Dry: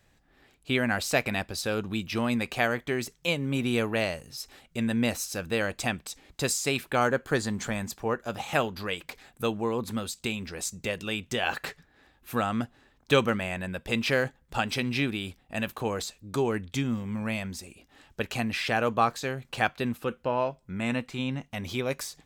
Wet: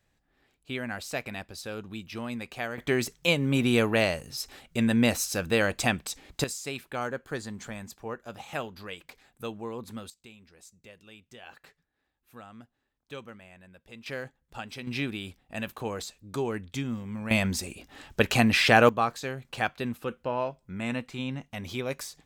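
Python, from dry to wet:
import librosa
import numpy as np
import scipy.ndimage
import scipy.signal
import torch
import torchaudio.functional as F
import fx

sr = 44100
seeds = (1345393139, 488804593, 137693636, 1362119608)

y = fx.gain(x, sr, db=fx.steps((0.0, -8.0), (2.78, 3.5), (6.44, -8.0), (10.1, -19.5), (14.06, -11.0), (14.87, -3.5), (17.31, 8.0), (18.89, -2.5)))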